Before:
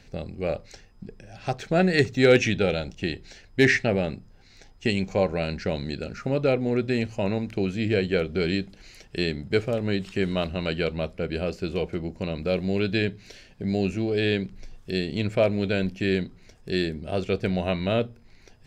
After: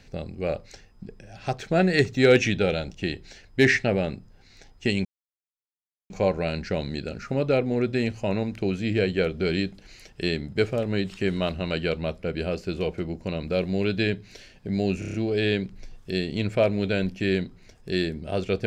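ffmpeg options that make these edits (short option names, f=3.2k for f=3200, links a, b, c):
-filter_complex "[0:a]asplit=7[a][b][c][d][e][f][g];[a]atrim=end=5.05,asetpts=PTS-STARTPTS,afade=t=out:st=5.046:d=0.004:c=hsin,apad=pad_dur=1.05[h];[b]atrim=start=5.05:end=13.972,asetpts=PTS-STARTPTS,afade=t=in:d=0.004:c=hsin[i];[c]atrim=start=13.938:end=13.972[j];[d]atrim=start=13.938:end=13.972[k];[e]atrim=start=13.938:end=13.972[l];[f]atrim=start=13.938:end=13.972[m];[g]atrim=start=13.938[n];[h][i]concat=n=2:v=0:a=1[o];[o][j]acrossfade=d=0.004:c1=hsin:c2=hsin[p];[p][k]acrossfade=d=0.004:c1=hsin:c2=hsin[q];[q][l]acrossfade=d=0.004:c1=hsin:c2=hsin[r];[r][m]acrossfade=d=0.004:c1=hsin:c2=hsin[s];[s][n]acrossfade=d=0.004:c1=hsin:c2=hsin"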